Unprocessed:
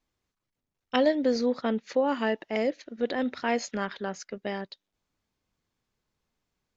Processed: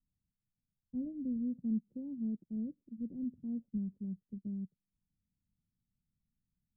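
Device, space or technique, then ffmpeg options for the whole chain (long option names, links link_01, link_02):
the neighbour's flat through the wall: -af "lowpass=frequency=210:width=0.5412,lowpass=frequency=210:width=1.3066,equalizer=frequency=190:width_type=o:width=0.77:gain=4,volume=-2dB"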